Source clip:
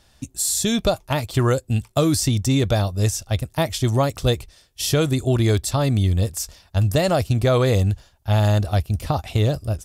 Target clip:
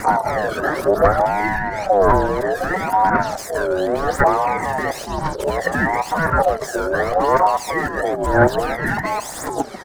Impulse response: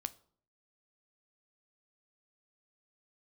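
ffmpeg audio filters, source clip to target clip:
-filter_complex "[0:a]areverse,asplit=2[link_01][link_02];[link_02]adelay=141,lowpass=frequency=2200:poles=1,volume=-22dB,asplit=2[link_03][link_04];[link_04]adelay=141,lowpass=frequency=2200:poles=1,volume=0.5,asplit=2[link_05][link_06];[link_06]adelay=141,lowpass=frequency=2200:poles=1,volume=0.5[link_07];[link_03][link_05][link_07]amix=inputs=3:normalize=0[link_08];[link_01][link_08]amix=inputs=2:normalize=0,asplit=2[link_09][link_10];[link_10]highpass=frequency=720:poles=1,volume=39dB,asoftclip=type=tanh:threshold=-6dB[link_11];[link_09][link_11]amix=inputs=2:normalize=0,lowpass=frequency=6600:poles=1,volume=-6dB,asplit=2[link_12][link_13];[1:a]atrim=start_sample=2205[link_14];[link_13][link_14]afir=irnorm=-1:irlink=0,volume=4dB[link_15];[link_12][link_15]amix=inputs=2:normalize=0,acompressor=threshold=-10dB:ratio=5,highshelf=frequency=1600:width_type=q:width=3:gain=-12,aphaser=in_gain=1:out_gain=1:delay=1.1:decay=0.76:speed=0.95:type=triangular,aeval=exprs='val(0)*sin(2*PI*660*n/s+660*0.3/0.66*sin(2*PI*0.66*n/s))':channel_layout=same,volume=-9.5dB"

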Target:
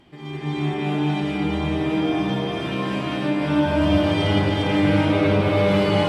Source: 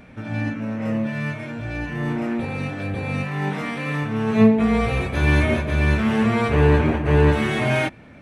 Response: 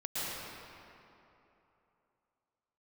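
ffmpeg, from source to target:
-filter_complex "[0:a]asetrate=59535,aresample=44100[link_01];[1:a]atrim=start_sample=2205,asetrate=23373,aresample=44100[link_02];[link_01][link_02]afir=irnorm=-1:irlink=0,dynaudnorm=framelen=280:gausssize=13:maxgain=11.5dB,volume=-6.5dB"

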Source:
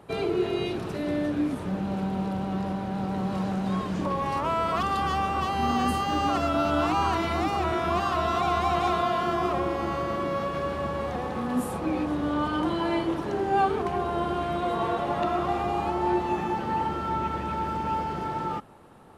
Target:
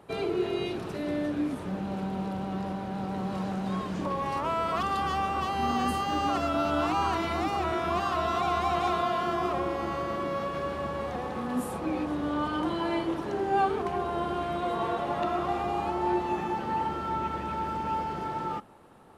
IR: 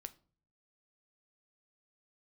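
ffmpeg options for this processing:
-filter_complex "[0:a]asplit=2[link_01][link_02];[link_02]highpass=160[link_03];[1:a]atrim=start_sample=2205[link_04];[link_03][link_04]afir=irnorm=-1:irlink=0,volume=-5.5dB[link_05];[link_01][link_05]amix=inputs=2:normalize=0,volume=-4.5dB"

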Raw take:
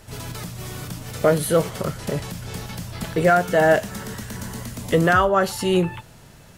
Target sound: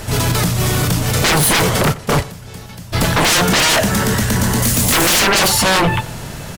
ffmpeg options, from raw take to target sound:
ffmpeg -i in.wav -filter_complex "[0:a]asplit=3[link_01][link_02][link_03];[link_01]afade=type=out:start_time=1.84:duration=0.02[link_04];[link_02]agate=range=-19dB:threshold=-25dB:ratio=16:detection=peak,afade=type=in:start_time=1.84:duration=0.02,afade=type=out:start_time=2.92:duration=0.02[link_05];[link_03]afade=type=in:start_time=2.92:duration=0.02[link_06];[link_04][link_05][link_06]amix=inputs=3:normalize=0,asettb=1/sr,asplit=3[link_07][link_08][link_09];[link_07]atrim=end=4.624[link_10];[link_08]atrim=start=4.62:end=5.48,asetpts=PTS-STARTPTS,afade=type=in:duration=0.004:curve=qsin,afade=type=out:start_time=0.856:duration=0.004:curve=qsin,highshelf=frequency=4800:gain=11.5[link_11];[link_09]atrim=start=5.476[link_12];[link_10][link_11]acrossfade=duration=0.004:curve1=hsin:curve2=qsin[link_13];[link_13][link_12]acrossfade=duration=0.004:curve1=qsin:curve2=hsin,aeval=exprs='0.531*sin(PI/2*8.91*val(0)/0.531)':channel_layout=same,asplit=2[link_14][link_15];[link_15]adelay=90,lowpass=frequency=3600:poles=1,volume=-19dB,asplit=2[link_16][link_17];[link_17]adelay=90,lowpass=frequency=3600:poles=1,volume=0.39,asplit=2[link_18][link_19];[link_19]adelay=90,lowpass=frequency=3600:poles=1,volume=0.39[link_20];[link_16][link_18][link_20]amix=inputs=3:normalize=0[link_21];[link_14][link_21]amix=inputs=2:normalize=0,volume=-4.5dB" out.wav

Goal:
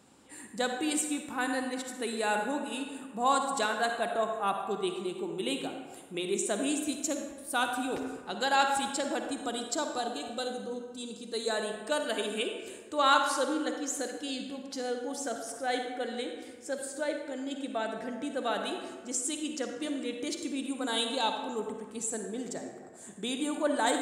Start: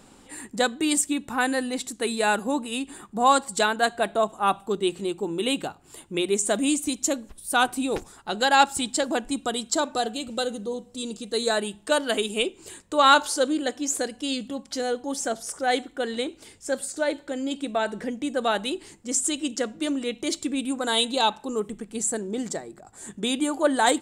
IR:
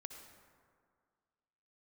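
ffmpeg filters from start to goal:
-filter_complex "[0:a]highpass=82[link_01];[1:a]atrim=start_sample=2205,asetrate=57330,aresample=44100[link_02];[link_01][link_02]afir=irnorm=-1:irlink=0"

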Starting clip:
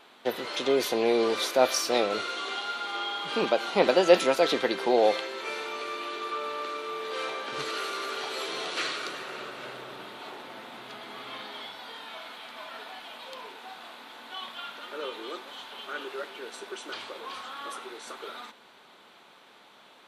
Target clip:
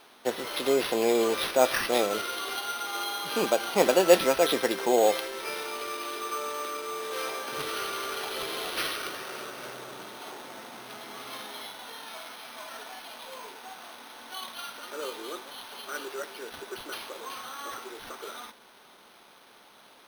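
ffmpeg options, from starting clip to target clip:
ffmpeg -i in.wav -af "acrusher=samples=6:mix=1:aa=0.000001" out.wav

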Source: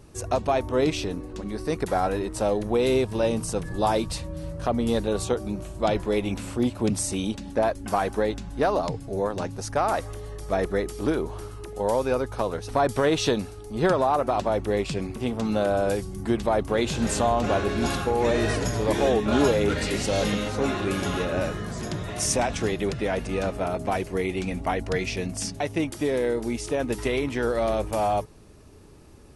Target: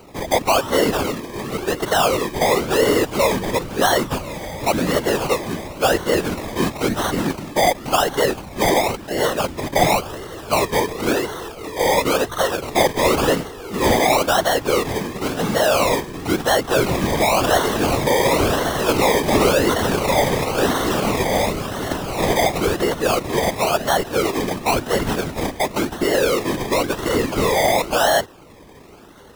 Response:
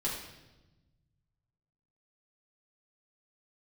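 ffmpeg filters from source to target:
-filter_complex "[0:a]asplit=2[link_01][link_02];[link_02]highpass=frequency=720:poles=1,volume=19dB,asoftclip=type=tanh:threshold=-8.5dB[link_03];[link_01][link_03]amix=inputs=2:normalize=0,lowpass=frequency=7100:poles=1,volume=-6dB,acrusher=samples=25:mix=1:aa=0.000001:lfo=1:lforange=15:lforate=0.95,afftfilt=real='hypot(re,im)*cos(2*PI*random(0))':imag='hypot(re,im)*sin(2*PI*random(1))':win_size=512:overlap=0.75,volume=6.5dB"

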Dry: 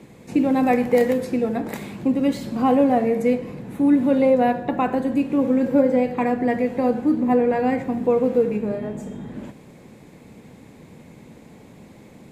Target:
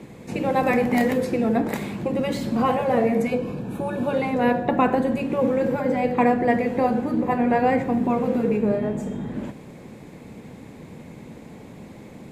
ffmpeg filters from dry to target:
ffmpeg -i in.wav -filter_complex "[0:a]asettb=1/sr,asplit=3[link_01][link_02][link_03];[link_01]atrim=end=3.274[link_04];[link_02]atrim=start=3.27:end=4.14,asetpts=PTS-STARTPTS,afade=type=in:duration=0.004:curve=qsin,afade=type=out:start_time=0.866:duration=0.004:curve=qsin,asuperstop=centerf=2000:order=12:qfactor=5.1[link_05];[link_03]atrim=start=4.136[link_06];[link_04][link_05]acrossfade=duration=0.004:curve1=hsin:curve2=qsin[link_07];[link_07][link_06]acrossfade=duration=0.004:curve1=qsin:curve2=hsin,highshelf=frequency=3400:gain=-3.5,afftfilt=real='re*lt(hypot(re,im),0.891)':imag='im*lt(hypot(re,im),0.891)':win_size=1024:overlap=0.75,volume=4dB" out.wav

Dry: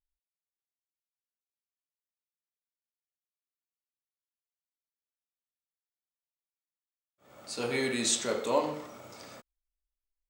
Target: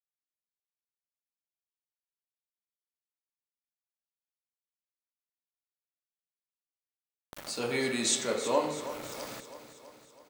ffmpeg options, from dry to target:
ffmpeg -i in.wav -af "highpass=68,aeval=exprs='val(0)*gte(abs(val(0)),0.00422)':channel_layout=same,acompressor=mode=upward:threshold=-33dB:ratio=2.5,aecho=1:1:326|652|978|1304|1630|1956:0.224|0.13|0.0753|0.0437|0.0253|0.0147" out.wav

